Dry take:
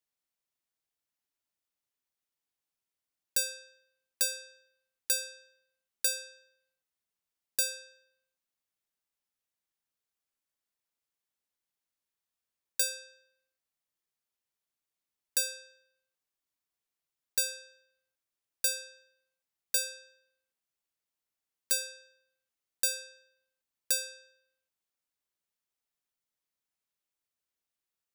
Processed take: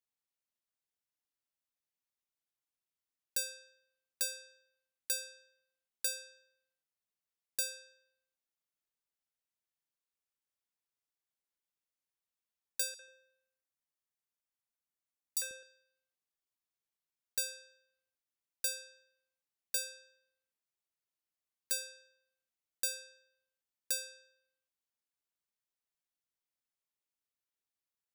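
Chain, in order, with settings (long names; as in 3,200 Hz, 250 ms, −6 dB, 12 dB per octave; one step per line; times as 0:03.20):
0:12.94–0:15.63: three-band delay without the direct sound highs, mids, lows 50/140 ms, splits 420/3,600 Hz
level −6 dB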